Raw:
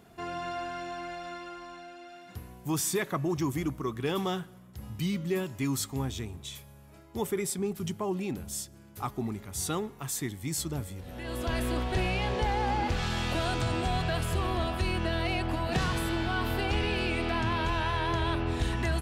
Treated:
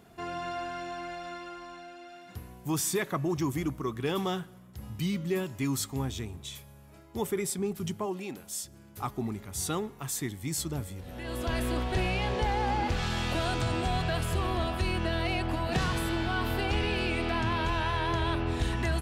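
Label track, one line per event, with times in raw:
8.050000	8.630000	high-pass filter 290 Hz → 750 Hz 6 dB per octave

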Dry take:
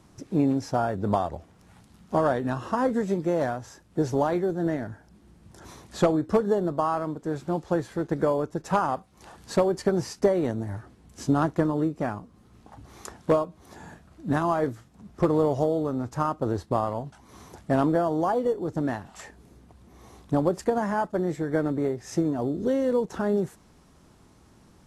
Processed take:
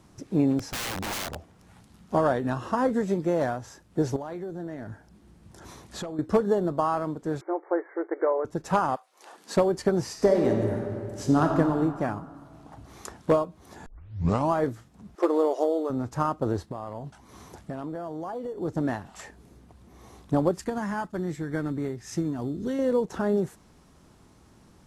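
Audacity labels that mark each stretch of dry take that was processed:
0.590000	1.360000	wrap-around overflow gain 27 dB
4.160000	6.190000	downward compressor, threshold −32 dBFS
7.410000	8.450000	linear-phase brick-wall band-pass 310–2,300 Hz
8.950000	9.550000	high-pass filter 720 Hz → 190 Hz 24 dB per octave
10.060000	11.580000	thrown reverb, RT60 2.4 s, DRR 1.5 dB
13.860000	13.860000	tape start 0.66 s
15.150000	15.900000	linear-phase brick-wall high-pass 290 Hz
16.710000	18.570000	downward compressor, threshold −31 dBFS
20.510000	22.790000	parametric band 570 Hz −9.5 dB 1.4 octaves

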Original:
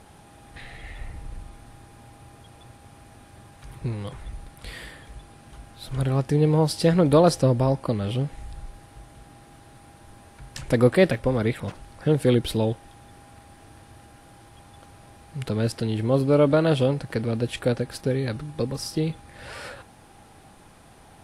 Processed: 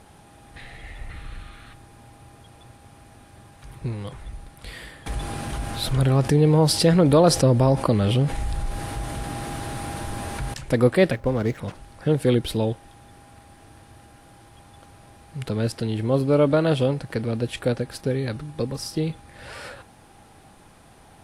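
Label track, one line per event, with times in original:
1.100000	1.730000	gain on a spectral selection 1,100–4,400 Hz +10 dB
5.060000	10.540000	envelope flattener amount 50%
11.160000	11.580000	running median over 15 samples

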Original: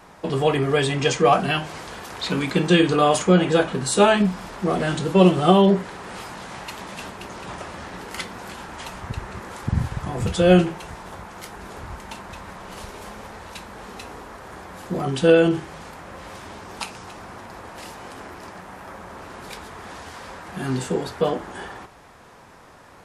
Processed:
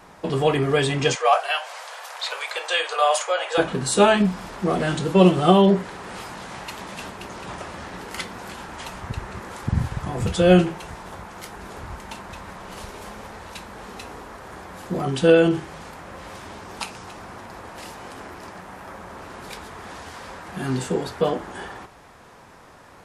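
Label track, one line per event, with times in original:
1.150000	3.580000	Butterworth high-pass 530 Hz 48 dB per octave

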